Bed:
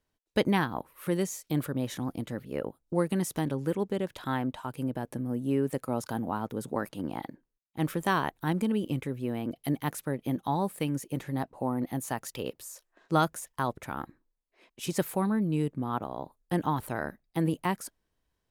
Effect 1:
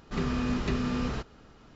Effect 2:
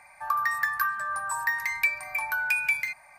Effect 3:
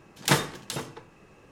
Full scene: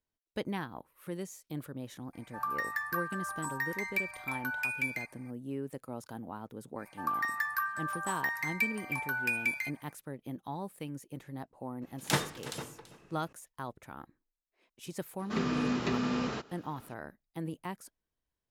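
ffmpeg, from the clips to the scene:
ffmpeg -i bed.wav -i cue0.wav -i cue1.wav -i cue2.wav -filter_complex "[2:a]asplit=2[link_01][link_02];[0:a]volume=-10.5dB[link_03];[link_02]highpass=100[link_04];[3:a]aecho=1:1:332:0.15[link_05];[1:a]highpass=180[link_06];[link_01]atrim=end=3.18,asetpts=PTS-STARTPTS,volume=-8dB,afade=type=in:duration=0.004:curve=hsin,afade=type=out:start_time=3.176:duration=0.004:curve=hsin,adelay=2130[link_07];[link_04]atrim=end=3.18,asetpts=PTS-STARTPTS,volume=-6dB,afade=type=in:duration=0.05,afade=type=out:start_time=3.13:duration=0.05,adelay=6770[link_08];[link_05]atrim=end=1.51,asetpts=PTS-STARTPTS,volume=-7dB,afade=type=in:duration=0.004:curve=hsin,afade=type=out:start_time=1.506:duration=0.004:curve=hsin,adelay=11820[link_09];[link_06]atrim=end=1.75,asetpts=PTS-STARTPTS,afade=type=in:duration=0.004:curve=hsin,afade=type=out:start_time=1.746:duration=0.004:curve=hsin,adelay=15190[link_10];[link_03][link_07][link_08][link_09][link_10]amix=inputs=5:normalize=0" out.wav

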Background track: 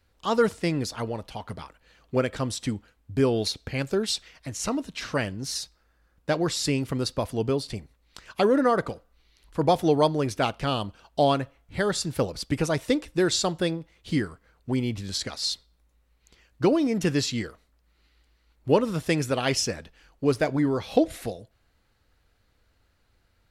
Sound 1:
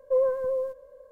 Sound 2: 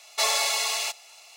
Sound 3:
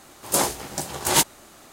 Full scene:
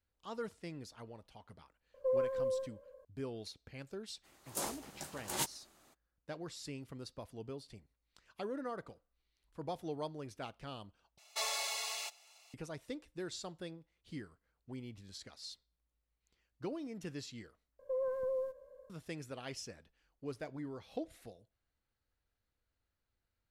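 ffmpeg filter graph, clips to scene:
ffmpeg -i bed.wav -i cue0.wav -i cue1.wav -i cue2.wav -filter_complex "[1:a]asplit=2[link_01][link_02];[0:a]volume=-20dB[link_03];[link_01]alimiter=limit=-19.5dB:level=0:latency=1:release=71[link_04];[link_02]alimiter=limit=-23.5dB:level=0:latency=1:release=71[link_05];[link_03]asplit=3[link_06][link_07][link_08];[link_06]atrim=end=11.184[link_09];[2:a]atrim=end=1.36,asetpts=PTS-STARTPTS,volume=-13dB[link_10];[link_07]atrim=start=12.536:end=17.794[link_11];[link_05]atrim=end=1.11,asetpts=PTS-STARTPTS,volume=-7.5dB[link_12];[link_08]atrim=start=18.896[link_13];[link_04]atrim=end=1.11,asetpts=PTS-STARTPTS,volume=-7.5dB,afade=type=in:duration=0.004:curve=hsin,afade=type=out:start_time=1.106:duration=0.004:curve=hsin,adelay=1940[link_14];[3:a]atrim=end=1.72,asetpts=PTS-STARTPTS,volume=-17.5dB,afade=type=in:duration=0.02,afade=type=out:start_time=1.7:duration=0.02,adelay=4230[link_15];[link_09][link_10]acrossfade=duration=0.004:curve1=hsin:curve2=hsin[link_16];[link_16][link_11]acrossfade=duration=0.004:curve1=hsin:curve2=hsin[link_17];[link_17][link_12]acrossfade=duration=0.004:curve1=hsin:curve2=hsin[link_18];[link_18][link_13]acrossfade=duration=0.004:curve1=hsin:curve2=hsin[link_19];[link_19][link_14][link_15]amix=inputs=3:normalize=0" out.wav

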